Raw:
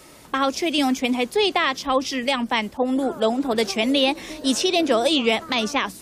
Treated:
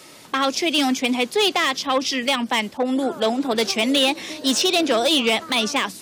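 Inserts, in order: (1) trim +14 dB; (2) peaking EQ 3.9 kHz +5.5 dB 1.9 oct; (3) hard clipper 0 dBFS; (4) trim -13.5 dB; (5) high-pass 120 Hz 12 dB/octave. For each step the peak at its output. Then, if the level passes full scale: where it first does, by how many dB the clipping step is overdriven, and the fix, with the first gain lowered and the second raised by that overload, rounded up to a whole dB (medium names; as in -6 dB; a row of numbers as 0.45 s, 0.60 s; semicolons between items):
+6.0 dBFS, +9.5 dBFS, 0.0 dBFS, -13.5 dBFS, -10.0 dBFS; step 1, 9.5 dB; step 1 +4 dB, step 4 -3.5 dB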